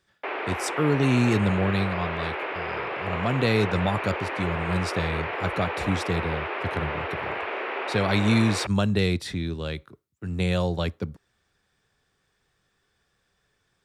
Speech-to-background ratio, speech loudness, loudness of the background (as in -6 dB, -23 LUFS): 4.0 dB, -26.5 LUFS, -30.5 LUFS